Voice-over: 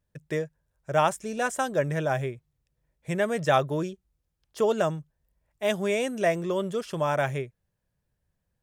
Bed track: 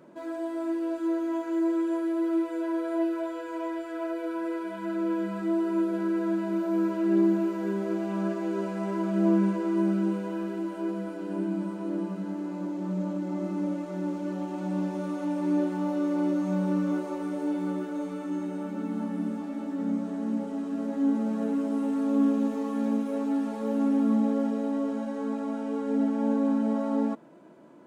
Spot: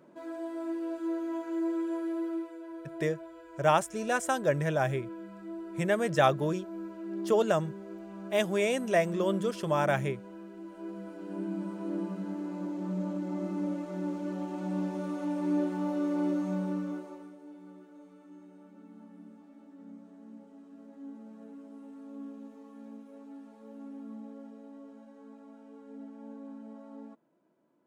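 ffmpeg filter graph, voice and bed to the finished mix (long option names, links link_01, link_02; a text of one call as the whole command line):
ffmpeg -i stem1.wav -i stem2.wav -filter_complex "[0:a]adelay=2700,volume=-1.5dB[link_01];[1:a]volume=6dB,afade=type=out:start_time=2.14:duration=0.45:silence=0.354813,afade=type=in:start_time=10.54:duration=1.4:silence=0.281838,afade=type=out:start_time=16.33:duration=1.04:silence=0.141254[link_02];[link_01][link_02]amix=inputs=2:normalize=0" out.wav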